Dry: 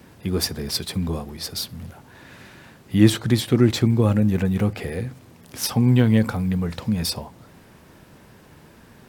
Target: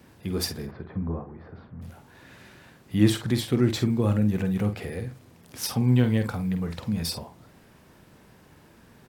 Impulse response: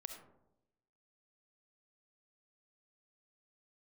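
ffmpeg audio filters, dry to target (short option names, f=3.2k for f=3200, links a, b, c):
-filter_complex "[0:a]asplit=3[a][b][c];[a]afade=t=out:st=0.65:d=0.02[d];[b]lowpass=f=1.6k:w=0.5412,lowpass=f=1.6k:w=1.3066,afade=t=in:st=0.65:d=0.02,afade=t=out:st=1.81:d=0.02[e];[c]afade=t=in:st=1.81:d=0.02[f];[d][e][f]amix=inputs=3:normalize=0,asplit=2[g][h];[h]adelay=48,volume=-9dB[i];[g][i]amix=inputs=2:normalize=0,volume=-5.5dB"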